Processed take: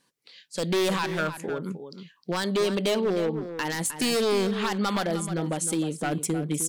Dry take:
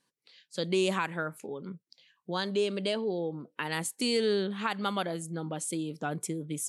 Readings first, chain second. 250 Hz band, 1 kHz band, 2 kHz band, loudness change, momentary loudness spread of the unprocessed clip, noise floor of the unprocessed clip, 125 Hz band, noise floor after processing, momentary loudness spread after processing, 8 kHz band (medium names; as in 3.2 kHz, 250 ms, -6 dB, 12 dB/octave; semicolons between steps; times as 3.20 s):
+6.0 dB, +4.5 dB, +4.0 dB, +5.0 dB, 13 LU, -83 dBFS, +6.5 dB, -68 dBFS, 8 LU, +7.0 dB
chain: in parallel at +2.5 dB: peak limiter -23 dBFS, peak gain reduction 7.5 dB; on the sum: wavefolder -19 dBFS; echo from a far wall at 53 m, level -10 dB